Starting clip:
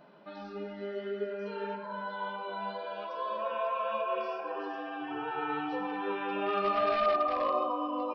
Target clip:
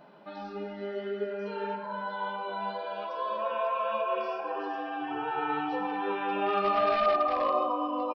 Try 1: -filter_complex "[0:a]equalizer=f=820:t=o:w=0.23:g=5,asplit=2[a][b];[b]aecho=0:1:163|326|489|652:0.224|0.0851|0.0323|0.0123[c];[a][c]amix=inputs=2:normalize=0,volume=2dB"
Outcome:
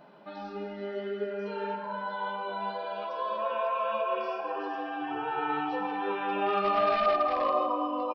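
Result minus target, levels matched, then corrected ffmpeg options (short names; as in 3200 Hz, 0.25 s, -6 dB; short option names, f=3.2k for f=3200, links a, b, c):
echo-to-direct +10 dB
-filter_complex "[0:a]equalizer=f=820:t=o:w=0.23:g=5,asplit=2[a][b];[b]aecho=0:1:163|326|489:0.0708|0.0269|0.0102[c];[a][c]amix=inputs=2:normalize=0,volume=2dB"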